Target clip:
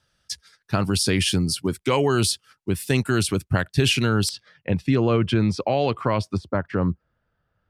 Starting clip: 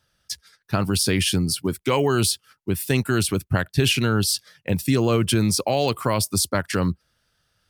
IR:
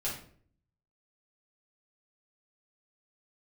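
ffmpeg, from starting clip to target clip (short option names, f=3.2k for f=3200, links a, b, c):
-af "asetnsamples=n=441:p=0,asendcmd='4.29 lowpass f 2800;6.37 lowpass f 1300',lowpass=10k"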